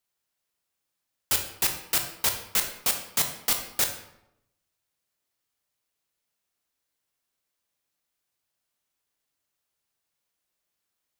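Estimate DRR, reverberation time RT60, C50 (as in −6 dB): 4.5 dB, 0.80 s, 7.5 dB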